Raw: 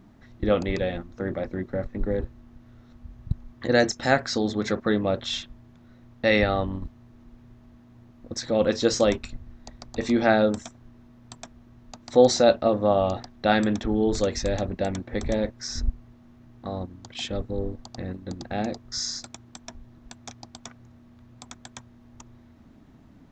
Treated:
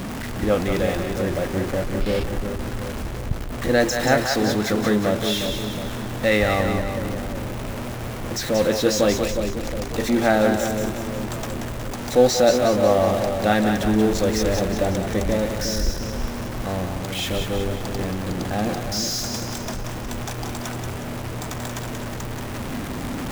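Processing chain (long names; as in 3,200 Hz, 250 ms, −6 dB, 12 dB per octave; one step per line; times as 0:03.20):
converter with a step at zero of −24.5 dBFS
parametric band 4,300 Hz −2.5 dB
echo with a time of its own for lows and highs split 570 Hz, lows 359 ms, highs 182 ms, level −5.5 dB
gain on a spectral selection 0:02.01–0:02.24, 2,100–5,500 Hz +8 dB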